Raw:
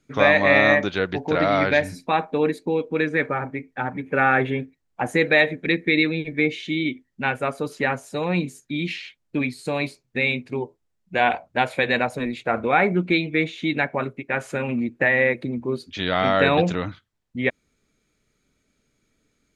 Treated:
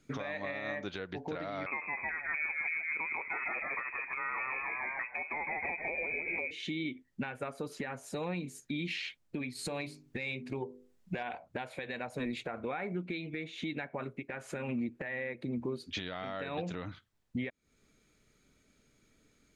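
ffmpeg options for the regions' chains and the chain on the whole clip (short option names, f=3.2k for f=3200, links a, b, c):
-filter_complex "[0:a]asettb=1/sr,asplit=3[a][b][c];[a]atrim=end=1.664[d];[b]atrim=start=1.66:end=6.51,asetpts=PTS-STARTPTS,afade=t=in:d=0.004:c=qsin,afade=t=out:st=4.846:d=0.004:c=qsin,asplit=8[e][f][g][h][i][j][k][l];[f]adelay=155,afreqshift=78,volume=-6dB[m];[g]adelay=310,afreqshift=156,volume=-11.4dB[n];[h]adelay=465,afreqshift=234,volume=-16.7dB[o];[i]adelay=620,afreqshift=312,volume=-22.1dB[p];[j]adelay=775,afreqshift=390,volume=-27.4dB[q];[k]adelay=930,afreqshift=468,volume=-32.8dB[r];[l]adelay=1085,afreqshift=546,volume=-38.1dB[s];[e][m][n][o][p][q][r][s]amix=inputs=8:normalize=0,atrim=end_sample=213885,lowpass=f=2.3k:t=q:w=0.5098,lowpass=f=2.3k:t=q:w=0.6013,lowpass=f=2.3k:t=q:w=0.9,lowpass=f=2.3k:t=q:w=2.563,afreqshift=-2700[t];[c]atrim=start=6.506[u];[d][t]acrossfade=d=0.004:c1=hsin:c2=qsin[v];[v][u]acrossfade=d=0.004:c1=qsin:c2=hsin,asettb=1/sr,asplit=3[w][x][y];[w]atrim=end=9.554[z];[x]atrim=start=9.55:end=11.23,asetpts=PTS-STARTPTS,afade=t=in:d=0.004:c=qsin,afade=t=out:st=1.676:d=0.004:c=qsin,bandreject=f=50:t=h:w=6,bandreject=f=100:t=h:w=6,bandreject=f=150:t=h:w=6,bandreject=f=200:t=h:w=6,bandreject=f=250:t=h:w=6,bandreject=f=300:t=h:w=6,bandreject=f=350:t=h:w=6,bandreject=f=400:t=h:w=6,bandreject=f=450:t=h:w=6,bandreject=f=500:t=h:w=6,acontrast=30[aa];[y]atrim=start=11.226[ab];[z][aa]acrossfade=d=0.004:c1=hsin:c2=qsin[ac];[ac][ab]acrossfade=d=0.004:c1=qsin:c2=hsin,acompressor=threshold=-29dB:ratio=6,alimiter=level_in=3.5dB:limit=-24dB:level=0:latency=1:release=393,volume=-3.5dB,volume=1dB"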